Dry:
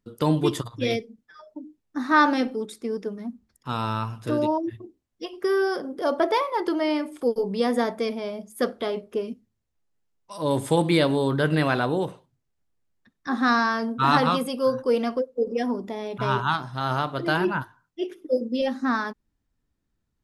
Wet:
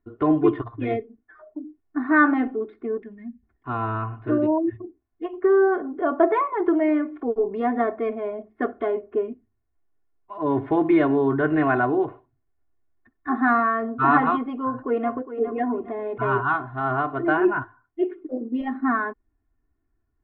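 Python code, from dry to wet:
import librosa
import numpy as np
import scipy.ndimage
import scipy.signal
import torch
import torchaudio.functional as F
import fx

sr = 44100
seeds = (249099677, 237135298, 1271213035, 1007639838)

y = fx.spec_box(x, sr, start_s=3.03, length_s=0.4, low_hz=250.0, high_hz=1600.0, gain_db=-17)
y = fx.echo_throw(y, sr, start_s=14.63, length_s=0.67, ms=410, feedback_pct=40, wet_db=-11.5)
y = scipy.signal.sosfilt(scipy.signal.cheby2(4, 60, 6200.0, 'lowpass', fs=sr, output='sos'), y)
y = fx.notch(y, sr, hz=490.0, q=12.0)
y = y + 0.95 * np.pad(y, (int(2.8 * sr / 1000.0), 0))[:len(y)]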